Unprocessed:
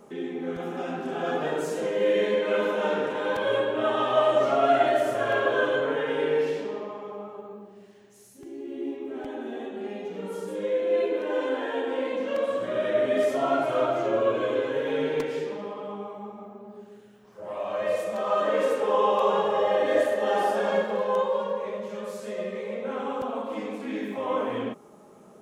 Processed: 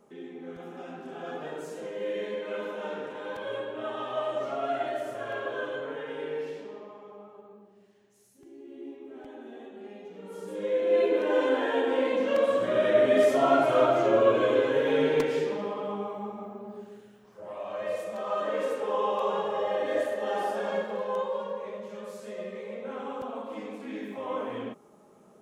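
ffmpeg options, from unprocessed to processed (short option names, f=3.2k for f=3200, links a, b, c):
-af "volume=2.5dB,afade=t=in:st=10.24:d=0.94:silence=0.251189,afade=t=out:st=16.71:d=0.85:silence=0.398107"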